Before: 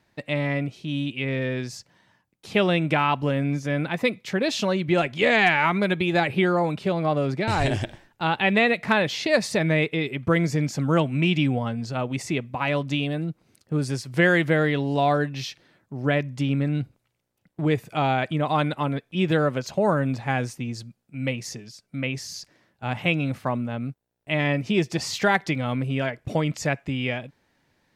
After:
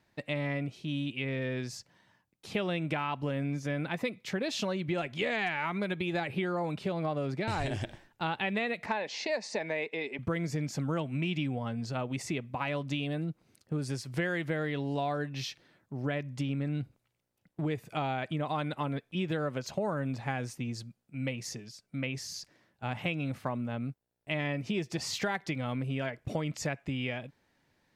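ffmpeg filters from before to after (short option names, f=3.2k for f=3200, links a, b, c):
-filter_complex "[0:a]asettb=1/sr,asplit=3[a][b][c];[a]atrim=end=8.864[d];[b]atrim=start=8.86:end=10.19,asetpts=PTS-STARTPTS,afade=t=in:d=0.004:c=qsin,afade=t=out:st=1.326:d=0.004:c=qsin,highpass=f=250:w=0.5412,highpass=f=250:w=1.3066,equalizer=f=320:t=q:w=4:g=-8,equalizer=f=880:t=q:w=4:g=6,equalizer=f=1.3k:t=q:w=4:g=-9,equalizer=f=3.3k:t=q:w=4:g=-8,lowpass=f=7.1k:w=0.5412,lowpass=f=7.1k:w=1.3066[e];[c]atrim=start=10.186[f];[d][e]acrossfade=d=0.004:c1=hsin:c2=qsin[g];[g][f]acrossfade=d=0.004:c1=qsin:c2=hsin,acompressor=threshold=-25dB:ratio=4,volume=-4.5dB"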